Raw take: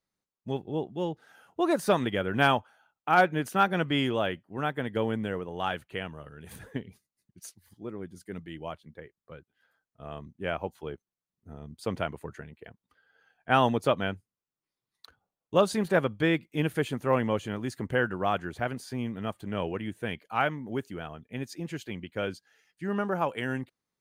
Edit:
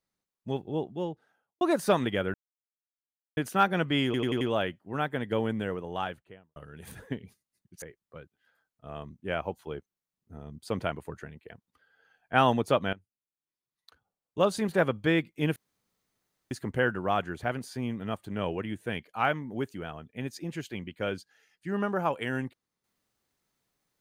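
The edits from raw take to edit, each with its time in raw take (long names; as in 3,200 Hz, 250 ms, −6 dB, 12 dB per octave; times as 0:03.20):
0:00.81–0:01.61: fade out and dull
0:02.34–0:03.37: silence
0:04.05: stutter 0.09 s, 5 plays
0:05.48–0:06.20: fade out and dull
0:07.46–0:08.98: remove
0:14.09–0:16.10: fade in linear, from −17.5 dB
0:16.72–0:17.67: fill with room tone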